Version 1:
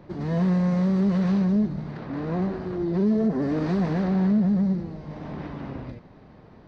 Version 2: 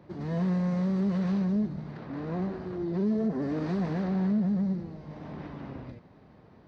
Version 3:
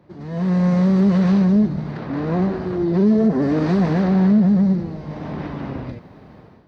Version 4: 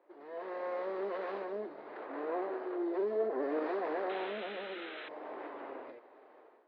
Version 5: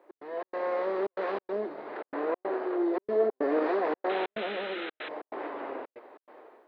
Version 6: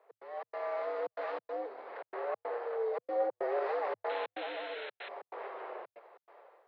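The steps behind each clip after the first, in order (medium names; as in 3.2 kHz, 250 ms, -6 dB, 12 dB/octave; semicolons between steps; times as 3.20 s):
high-pass 51 Hz; trim -5.5 dB
level rider gain up to 12 dB
painted sound noise, 4.09–5.09 s, 1.2–4.1 kHz -34 dBFS; inverse Chebyshev high-pass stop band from 190 Hz, stop band 40 dB; distance through air 430 m; trim -7.5 dB
trance gate "x.xx.xxxx" 141 bpm -60 dB; trim +7.5 dB
frequency shift +100 Hz; trim -6 dB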